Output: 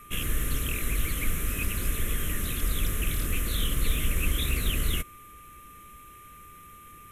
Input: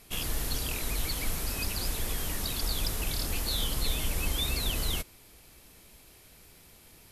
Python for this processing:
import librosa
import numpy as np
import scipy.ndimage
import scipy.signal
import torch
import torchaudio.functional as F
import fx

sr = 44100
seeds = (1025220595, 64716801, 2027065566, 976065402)

y = x + 10.0 ** (-48.0 / 20.0) * np.sin(2.0 * np.pi * 1200.0 * np.arange(len(x)) / sr)
y = fx.fixed_phaser(y, sr, hz=2000.0, stages=4)
y = fx.doppler_dist(y, sr, depth_ms=0.28)
y = y * 10.0 ** (5.0 / 20.0)